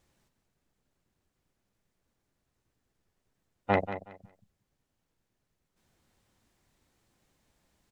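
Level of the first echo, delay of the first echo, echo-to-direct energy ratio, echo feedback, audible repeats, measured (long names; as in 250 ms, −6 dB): −11.5 dB, 185 ms, −11.5 dB, 21%, 2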